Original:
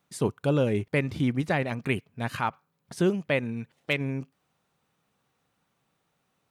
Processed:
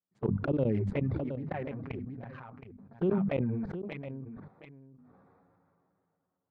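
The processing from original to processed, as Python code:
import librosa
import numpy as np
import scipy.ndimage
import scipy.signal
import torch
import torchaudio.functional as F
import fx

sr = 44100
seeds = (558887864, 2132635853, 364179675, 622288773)

y = fx.wiener(x, sr, points=15)
y = scipy.signal.sosfilt(scipy.signal.butter(2, 54.0, 'highpass', fs=sr, output='sos'), y)
y = fx.low_shelf(y, sr, hz=72.0, db=-7.0)
y = fx.hum_notches(y, sr, base_hz=50, count=5)
y = fx.level_steps(y, sr, step_db=24)
y = fx.env_flanger(y, sr, rest_ms=11.0, full_db=-24.5)
y = np.clip(10.0 ** (18.0 / 20.0) * y, -1.0, 1.0) / 10.0 ** (18.0 / 20.0)
y = fx.spacing_loss(y, sr, db_at_10k=41)
y = y + 10.0 ** (-11.5 / 20.0) * np.pad(y, (int(719 * sr / 1000.0), 0))[:len(y)]
y = fx.sustainer(y, sr, db_per_s=20.0)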